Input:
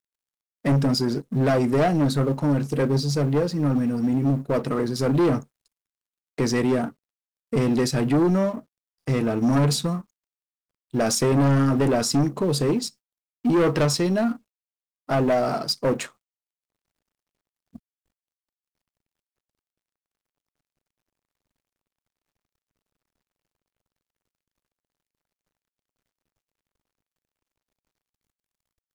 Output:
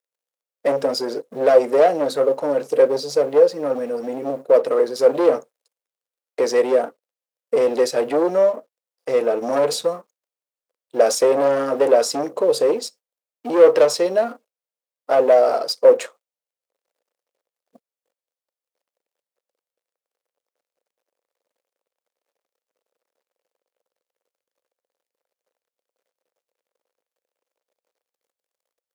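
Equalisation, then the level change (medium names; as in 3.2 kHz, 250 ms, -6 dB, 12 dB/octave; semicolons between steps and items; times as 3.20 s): resonant high-pass 510 Hz, resonance Q 4.9; 0.0 dB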